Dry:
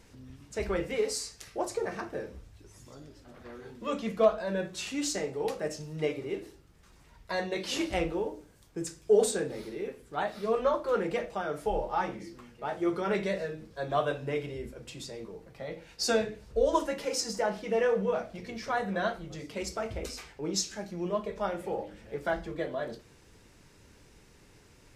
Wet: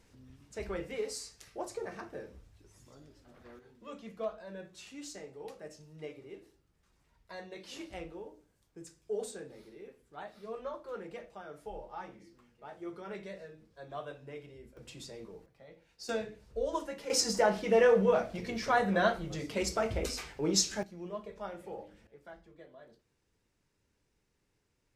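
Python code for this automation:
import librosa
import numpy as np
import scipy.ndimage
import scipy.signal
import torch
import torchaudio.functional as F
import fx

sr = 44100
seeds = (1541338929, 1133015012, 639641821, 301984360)

y = fx.gain(x, sr, db=fx.steps((0.0, -7.0), (3.59, -13.5), (14.77, -5.0), (15.46, -15.5), (16.09, -8.0), (17.1, 3.0), (20.83, -9.5), (22.07, -20.0)))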